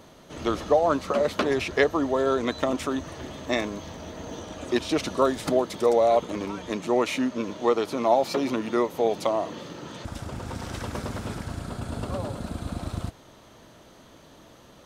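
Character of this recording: noise floor -52 dBFS; spectral tilt -4.5 dB/octave

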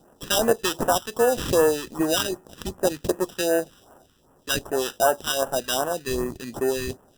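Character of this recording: aliases and images of a low sample rate 2.2 kHz, jitter 0%; phasing stages 2, 2.6 Hz, lowest notch 640–3900 Hz

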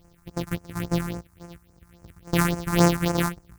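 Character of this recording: a buzz of ramps at a fixed pitch in blocks of 256 samples; tremolo saw down 2.2 Hz, depth 40%; a quantiser's noise floor 12-bit, dither triangular; phasing stages 4, 3.6 Hz, lowest notch 490–3600 Hz

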